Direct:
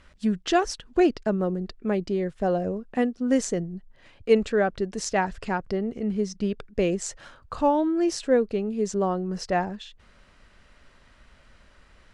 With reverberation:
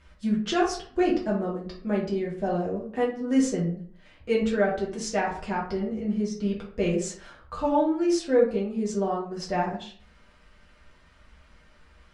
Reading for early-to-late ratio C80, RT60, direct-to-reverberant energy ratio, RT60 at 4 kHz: 10.5 dB, 0.50 s, −5.0 dB, 0.30 s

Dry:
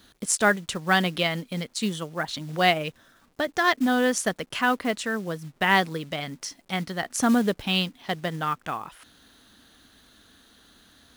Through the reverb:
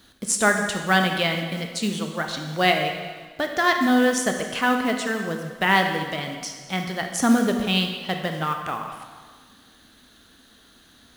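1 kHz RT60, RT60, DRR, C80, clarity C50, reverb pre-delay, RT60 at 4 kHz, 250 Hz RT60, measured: 1.6 s, 1.6 s, 4.0 dB, 6.5 dB, 5.5 dB, 22 ms, 1.4 s, 1.5 s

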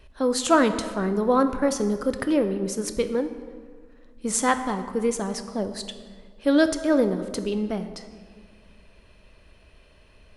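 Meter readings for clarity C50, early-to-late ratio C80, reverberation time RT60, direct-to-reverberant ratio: 10.5 dB, 12.0 dB, 1.8 s, 8.5 dB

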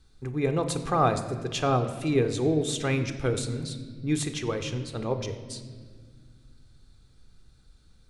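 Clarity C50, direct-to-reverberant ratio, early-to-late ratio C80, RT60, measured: 10.0 dB, 8.0 dB, 11.5 dB, 1.8 s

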